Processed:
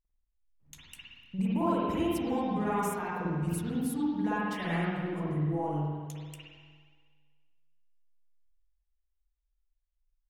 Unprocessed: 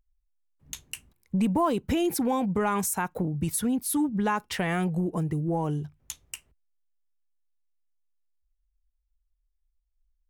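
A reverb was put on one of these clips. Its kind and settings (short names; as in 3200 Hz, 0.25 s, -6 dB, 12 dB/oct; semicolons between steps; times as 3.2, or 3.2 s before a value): spring tank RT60 1.7 s, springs 47/53 ms, chirp 65 ms, DRR -9 dB; gain -13.5 dB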